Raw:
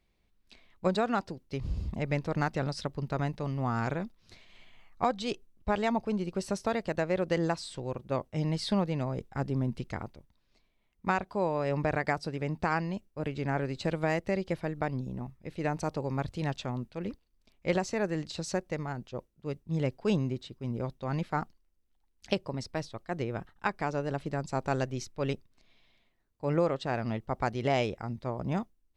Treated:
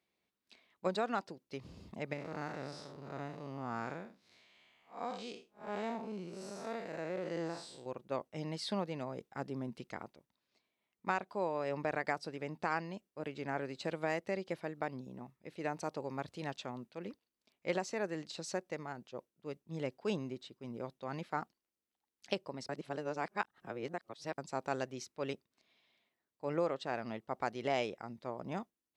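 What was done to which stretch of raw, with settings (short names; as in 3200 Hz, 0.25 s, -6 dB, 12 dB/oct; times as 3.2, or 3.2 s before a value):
2.13–7.86 time blur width 0.15 s
22.69–24.38 reverse
whole clip: Bessel high-pass 270 Hz, order 2; gain -5 dB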